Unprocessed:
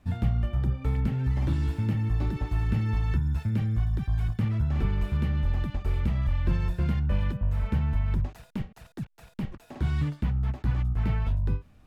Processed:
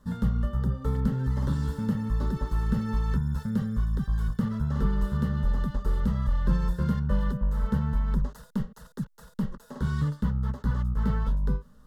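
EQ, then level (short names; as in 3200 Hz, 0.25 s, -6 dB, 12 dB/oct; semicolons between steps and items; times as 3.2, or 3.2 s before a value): fixed phaser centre 480 Hz, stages 8; +5.0 dB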